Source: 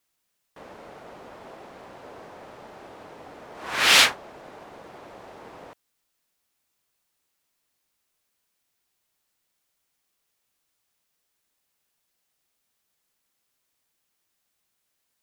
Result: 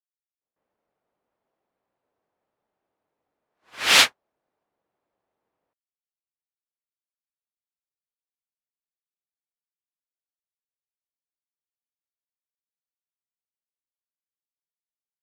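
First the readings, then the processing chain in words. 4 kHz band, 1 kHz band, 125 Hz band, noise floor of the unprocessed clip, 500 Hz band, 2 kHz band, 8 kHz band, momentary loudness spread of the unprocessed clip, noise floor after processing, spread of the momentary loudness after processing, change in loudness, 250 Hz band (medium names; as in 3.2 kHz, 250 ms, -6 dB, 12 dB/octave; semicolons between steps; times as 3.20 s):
-0.5 dB, -2.0 dB, -4.0 dB, -77 dBFS, -3.5 dB, -1.0 dB, 0.0 dB, 11 LU, under -85 dBFS, 9 LU, 0.0 dB, -3.5 dB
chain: level-controlled noise filter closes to 2 kHz; pre-echo 152 ms -17 dB; upward expansion 2.5:1, over -40 dBFS; trim +1.5 dB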